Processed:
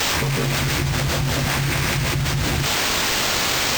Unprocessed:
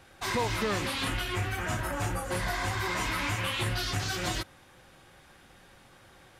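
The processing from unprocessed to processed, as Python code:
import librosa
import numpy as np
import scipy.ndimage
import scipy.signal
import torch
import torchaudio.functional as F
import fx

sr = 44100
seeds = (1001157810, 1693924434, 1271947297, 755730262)

y = fx.octave_divider(x, sr, octaves=2, level_db=4.0)
y = scipy.signal.sosfilt(scipy.signal.butter(4, 3800.0, 'lowpass', fs=sr, output='sos'), y)
y = fx.peak_eq(y, sr, hz=2100.0, db=13.5, octaves=0.34)
y = fx.rider(y, sr, range_db=10, speed_s=2.0)
y = fx.vocoder(y, sr, bands=16, carrier='saw', carrier_hz=107.0)
y = fx.quant_dither(y, sr, seeds[0], bits=6, dither='triangular')
y = y * np.sin(2.0 * np.pi * 30.0 * np.arange(len(y)) / sr)
y = fx.stretch_vocoder(y, sr, factor=0.59)
y = np.repeat(y[::4], 4)[:len(y)]
y = fx.env_flatten(y, sr, amount_pct=100)
y = y * librosa.db_to_amplitude(6.5)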